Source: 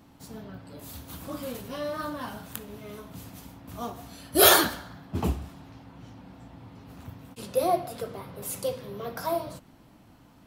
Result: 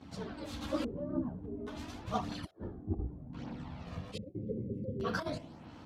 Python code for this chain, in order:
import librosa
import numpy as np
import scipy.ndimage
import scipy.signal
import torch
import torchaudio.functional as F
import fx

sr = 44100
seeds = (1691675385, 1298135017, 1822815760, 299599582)

p1 = scipy.signal.sosfilt(scipy.signal.butter(2, 63.0, 'highpass', fs=sr, output='sos'), x)
p2 = p1 + fx.echo_feedback(p1, sr, ms=68, feedback_pct=58, wet_db=-19, dry=0)
p3 = fx.over_compress(p2, sr, threshold_db=-31.0, ratio=-0.5)
p4 = fx.spec_box(p3, sr, start_s=7.39, length_s=1.6, low_hz=580.0, high_hz=1900.0, gain_db=-26)
p5 = fx.stretch_grains(p4, sr, factor=0.56, grain_ms=30.0)
p6 = fx.filter_lfo_lowpass(p5, sr, shape='square', hz=0.6, low_hz=330.0, high_hz=4800.0, q=0.93)
p7 = fx.chorus_voices(p6, sr, voices=2, hz=0.43, base_ms=11, depth_ms=1.9, mix_pct=70)
y = F.gain(torch.from_numpy(p7), 1.5).numpy()